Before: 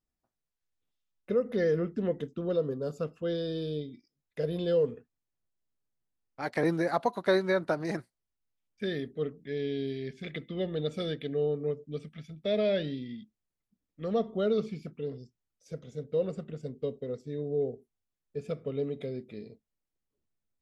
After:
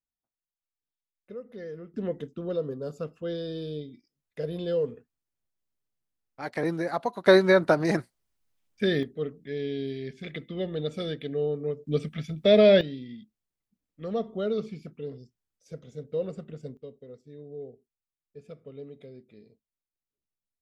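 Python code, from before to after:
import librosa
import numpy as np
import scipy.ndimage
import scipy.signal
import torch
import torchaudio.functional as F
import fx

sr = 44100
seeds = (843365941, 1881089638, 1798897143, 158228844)

y = fx.gain(x, sr, db=fx.steps((0.0, -12.5), (1.94, -1.0), (7.26, 8.0), (9.03, 1.0), (11.87, 10.5), (12.81, -1.0), (16.77, -10.0)))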